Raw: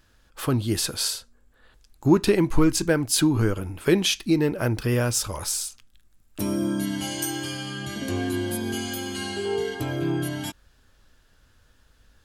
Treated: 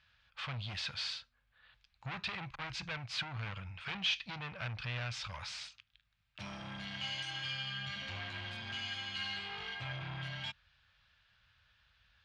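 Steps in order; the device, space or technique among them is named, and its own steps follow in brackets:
scooped metal amplifier (tube saturation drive 27 dB, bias 0.4; loudspeaker in its box 82–3,900 Hz, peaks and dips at 130 Hz +5 dB, 190 Hz +4 dB, 410 Hz −8 dB, 2,400 Hz +4 dB; guitar amp tone stack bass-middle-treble 10-0-10)
level +2 dB

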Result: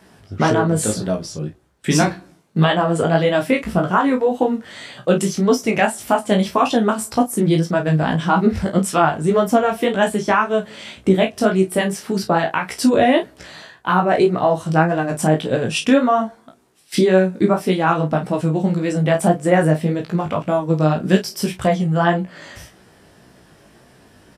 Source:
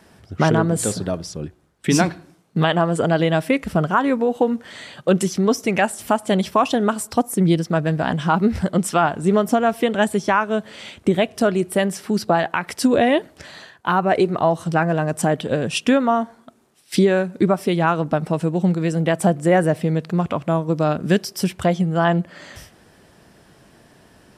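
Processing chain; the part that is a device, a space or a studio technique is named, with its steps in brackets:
double-tracked vocal (double-tracking delay 32 ms −8 dB; chorus effect 1.8 Hz, delay 15.5 ms, depth 4.3 ms)
level +4 dB

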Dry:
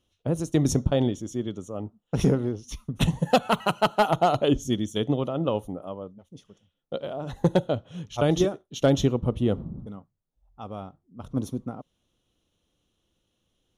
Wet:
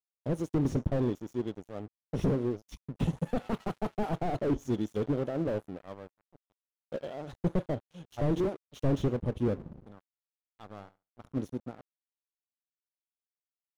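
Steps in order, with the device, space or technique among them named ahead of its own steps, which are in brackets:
dynamic equaliser 410 Hz, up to +7 dB, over −35 dBFS, Q 0.99
early transistor amplifier (dead-zone distortion −40.5 dBFS; slew-rate limiting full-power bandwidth 41 Hz)
0:10.63–0:11.32: flutter between parallel walls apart 11.9 metres, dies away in 0.25 s
level −6.5 dB

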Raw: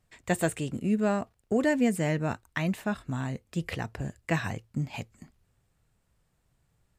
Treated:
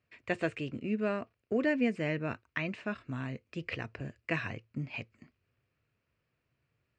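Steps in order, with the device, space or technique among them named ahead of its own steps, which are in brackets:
guitar cabinet (loudspeaker in its box 110–4,600 Hz, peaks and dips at 180 Hz −9 dB, 820 Hz −10 dB, 2,500 Hz +7 dB, 3,600 Hz −7 dB)
0:02.71–0:04.44: parametric band 8,600 Hz +5 dB 0.75 octaves
level −3 dB

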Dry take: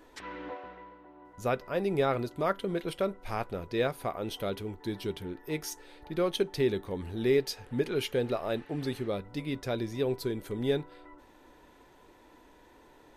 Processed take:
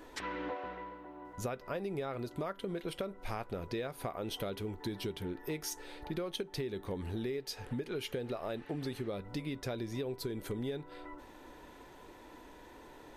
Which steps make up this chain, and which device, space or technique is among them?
serial compression, leveller first (downward compressor 2 to 1, threshold −30 dBFS, peak gain reduction 5.5 dB; downward compressor, threshold −39 dBFS, peak gain reduction 12.5 dB)
level +4 dB

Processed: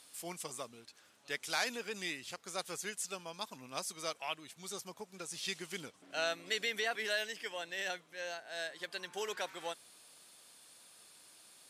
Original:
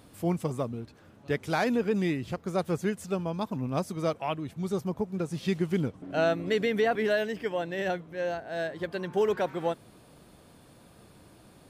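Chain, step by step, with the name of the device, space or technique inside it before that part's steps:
piezo pickup straight into a mixer (low-pass filter 8,800 Hz 12 dB per octave; first difference)
level +8.5 dB

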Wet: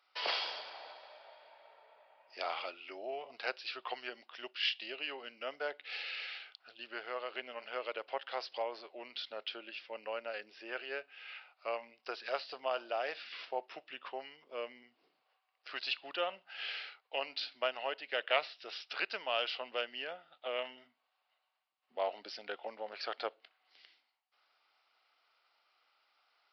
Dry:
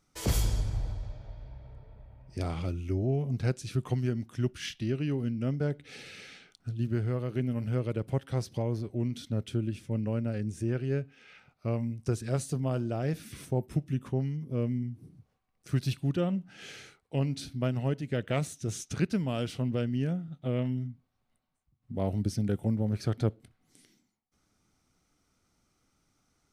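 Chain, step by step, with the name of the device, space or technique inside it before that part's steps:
0:04.09–0:05.04: dynamic equaliser 1,400 Hz, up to −6 dB, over −56 dBFS, Q 1.4
musical greeting card (downsampling to 11,025 Hz; high-pass filter 650 Hz 24 dB per octave; parametric band 2,800 Hz +6.5 dB 0.24 octaves)
level +4.5 dB

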